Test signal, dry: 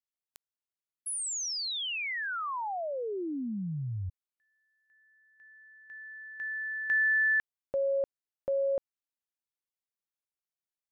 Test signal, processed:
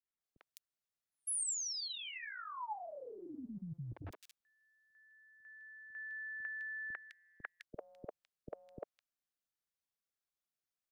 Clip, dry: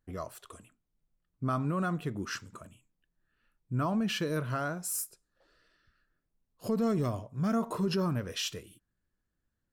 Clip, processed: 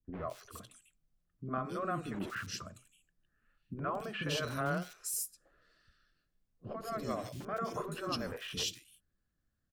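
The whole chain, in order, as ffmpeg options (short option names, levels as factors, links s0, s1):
-filter_complex "[0:a]bandreject=f=920:w=5.8,afftfilt=real='re*lt(hypot(re,im),0.178)':imag='im*lt(hypot(re,im),0.178)':win_size=1024:overlap=0.75,adynamicequalizer=threshold=0.00224:dfrequency=140:dqfactor=0.98:tfrequency=140:tqfactor=0.98:attack=5:release=100:ratio=0.417:range=1.5:mode=boostabove:tftype=bell,acrossover=split=130|1100|6100[s0][s1][s2][s3];[s0]aeval=exprs='(mod(150*val(0)+1,2)-1)/150':c=same[s4];[s3]flanger=delay=1.6:depth=3.7:regen=-22:speed=1.6:shape=sinusoidal[s5];[s4][s1][s2][s5]amix=inputs=4:normalize=0,acrossover=split=370|2500[s6][s7][s8];[s7]adelay=50[s9];[s8]adelay=210[s10];[s6][s9][s10]amix=inputs=3:normalize=0,volume=1.12"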